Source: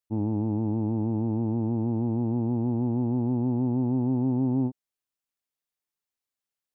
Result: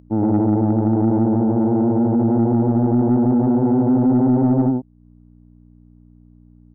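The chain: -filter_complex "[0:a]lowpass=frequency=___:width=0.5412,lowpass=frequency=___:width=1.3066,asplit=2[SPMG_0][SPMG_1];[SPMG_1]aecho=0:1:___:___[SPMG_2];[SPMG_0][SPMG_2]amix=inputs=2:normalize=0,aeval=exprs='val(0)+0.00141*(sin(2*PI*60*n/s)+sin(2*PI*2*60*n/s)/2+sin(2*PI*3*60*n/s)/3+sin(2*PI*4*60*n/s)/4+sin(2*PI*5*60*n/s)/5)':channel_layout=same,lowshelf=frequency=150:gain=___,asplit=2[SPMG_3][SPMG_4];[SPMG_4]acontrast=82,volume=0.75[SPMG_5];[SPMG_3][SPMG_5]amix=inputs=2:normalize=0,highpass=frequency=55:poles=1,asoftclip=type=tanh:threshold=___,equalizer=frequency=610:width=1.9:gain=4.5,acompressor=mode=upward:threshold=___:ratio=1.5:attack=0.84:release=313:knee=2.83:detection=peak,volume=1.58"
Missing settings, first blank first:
1.1k, 1.1k, 101, 0.668, -7.5, 0.211, 0.02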